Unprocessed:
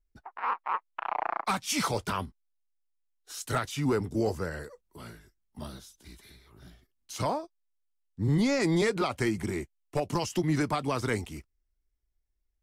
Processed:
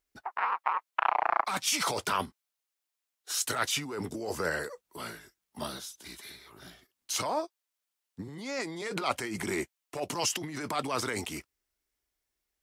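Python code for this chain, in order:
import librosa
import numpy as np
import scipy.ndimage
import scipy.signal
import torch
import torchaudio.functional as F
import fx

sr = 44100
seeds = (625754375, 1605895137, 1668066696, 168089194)

y = fx.over_compress(x, sr, threshold_db=-33.0, ratio=-1.0)
y = fx.highpass(y, sr, hz=550.0, slope=6)
y = y * 10.0 ** (5.0 / 20.0)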